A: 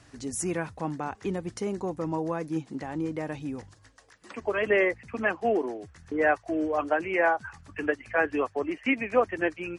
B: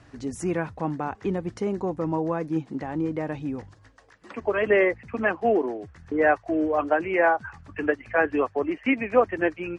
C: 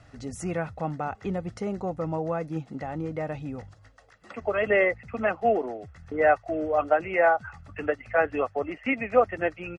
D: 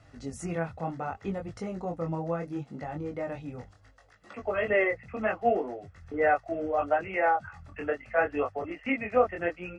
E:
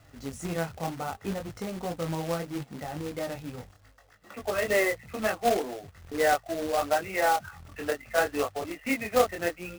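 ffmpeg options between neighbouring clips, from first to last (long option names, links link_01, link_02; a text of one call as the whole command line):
ffmpeg -i in.wav -af "aemphasis=mode=reproduction:type=75kf,volume=4dB" out.wav
ffmpeg -i in.wav -af "aecho=1:1:1.5:0.5,volume=-2dB" out.wav
ffmpeg -i in.wav -af "flanger=delay=20:depth=4.4:speed=0.7" out.wav
ffmpeg -i in.wav -af "acrusher=bits=2:mode=log:mix=0:aa=0.000001" out.wav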